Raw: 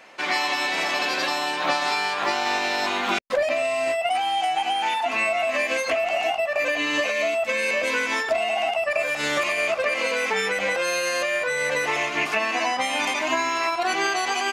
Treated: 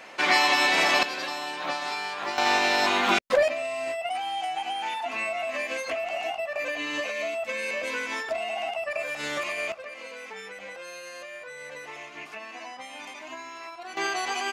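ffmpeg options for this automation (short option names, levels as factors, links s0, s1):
-af "asetnsamples=n=441:p=0,asendcmd='1.03 volume volume -7.5dB;2.38 volume volume 1.5dB;3.48 volume volume -7dB;9.72 volume volume -16.5dB;13.97 volume volume -5dB',volume=1.41"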